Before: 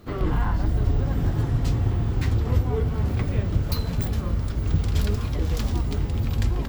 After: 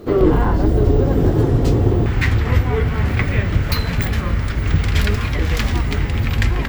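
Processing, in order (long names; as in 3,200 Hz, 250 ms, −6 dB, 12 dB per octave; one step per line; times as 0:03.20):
parametric band 410 Hz +13 dB 1.3 octaves, from 0:02.06 2,000 Hz
level +5.5 dB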